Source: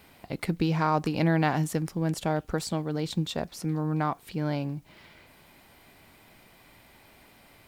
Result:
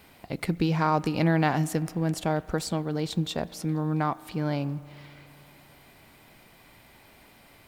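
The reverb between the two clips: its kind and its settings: spring tank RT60 3.4 s, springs 35 ms, chirp 40 ms, DRR 19 dB; gain +1 dB

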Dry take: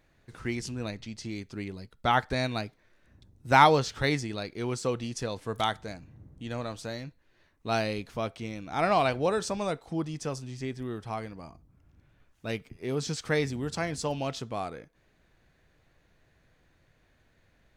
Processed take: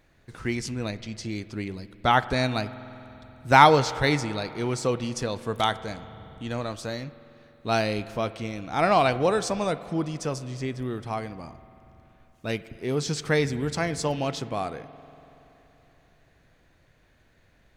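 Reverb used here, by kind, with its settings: spring tank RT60 3.4 s, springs 47 ms, chirp 60 ms, DRR 15 dB; gain +4 dB

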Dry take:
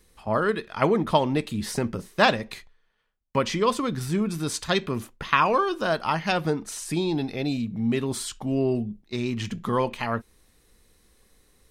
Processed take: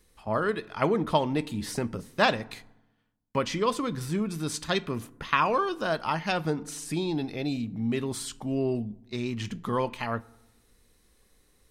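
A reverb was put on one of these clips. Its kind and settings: FDN reverb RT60 0.99 s, low-frequency decay 1.35×, high-frequency decay 0.5×, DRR 19.5 dB; gain -3.5 dB

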